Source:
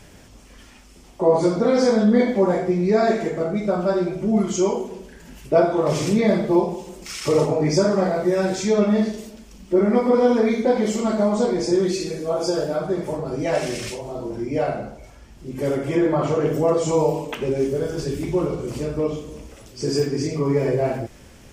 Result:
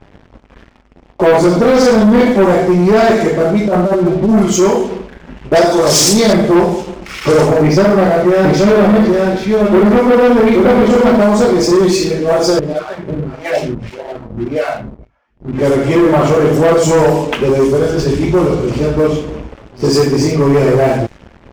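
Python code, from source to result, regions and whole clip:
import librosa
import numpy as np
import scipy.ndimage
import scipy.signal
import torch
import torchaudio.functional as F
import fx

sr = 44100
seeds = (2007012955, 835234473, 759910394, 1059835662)

y = fx.chain(x, sr, fx.lowpass(hz=1300.0, slope=12),
    fx.over_compress(threshold_db=-22.0, ratio=-0.5), at=(3.68, 4.29))
y = fx.chain(y, sr, fx.highpass(hz=230.0, slope=6),
    fx.high_shelf_res(hz=3400.0, db=11.0, q=1.5), at=(5.55, 6.33))
y = fx.chain(y, sr, fx.lowpass(hz=3700.0, slope=12),
    fx.echo_single(ms=826, db=-4.0), at=(7.62, 11.21))
y = fx.chain(y, sr, fx.filter_lfo_notch(shape='sine', hz=2.2, low_hz=340.0, high_hz=1500.0, q=0.85),
    fx.harmonic_tremolo(hz=1.7, depth_pct=100, crossover_hz=400.0), at=(12.59, 15.53))
y = fx.env_lowpass(y, sr, base_hz=1500.0, full_db=-17.0)
y = fx.leveller(y, sr, passes=3)
y = y * librosa.db_to_amplitude(2.0)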